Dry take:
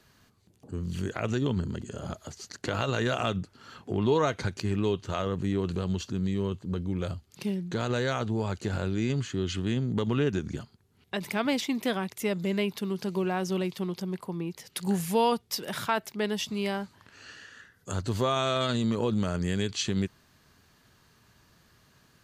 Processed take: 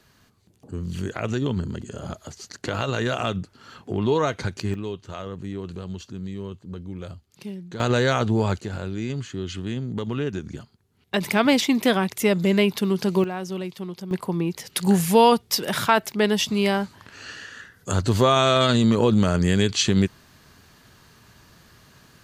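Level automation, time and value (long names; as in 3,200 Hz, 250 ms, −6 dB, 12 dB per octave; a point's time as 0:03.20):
+3 dB
from 0:04.74 −4 dB
from 0:07.80 +8 dB
from 0:08.60 −0.5 dB
from 0:11.14 +9 dB
from 0:13.24 −1 dB
from 0:14.11 +9 dB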